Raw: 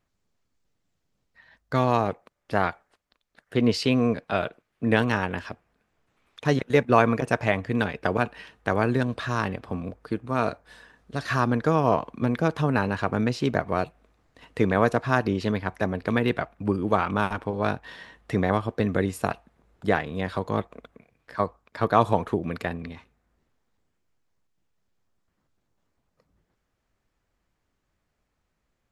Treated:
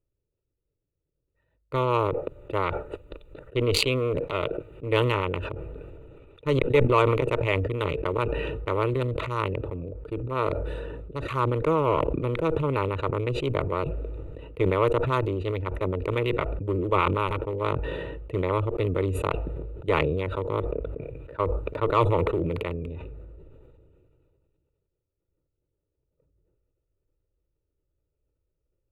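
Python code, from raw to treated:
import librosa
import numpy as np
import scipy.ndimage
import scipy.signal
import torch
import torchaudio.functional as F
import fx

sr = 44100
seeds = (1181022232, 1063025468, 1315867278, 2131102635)

y = fx.wiener(x, sr, points=41)
y = fx.cheby_harmonics(y, sr, harmonics=(6,), levels_db=(-23,), full_scale_db=-3.5)
y = fx.fixed_phaser(y, sr, hz=1100.0, stages=8)
y = fx.sustainer(y, sr, db_per_s=23.0)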